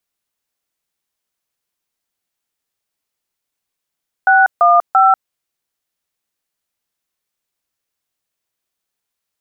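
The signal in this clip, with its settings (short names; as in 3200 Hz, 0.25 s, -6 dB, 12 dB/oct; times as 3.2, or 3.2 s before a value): DTMF "615", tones 0.192 s, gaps 0.147 s, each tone -9.5 dBFS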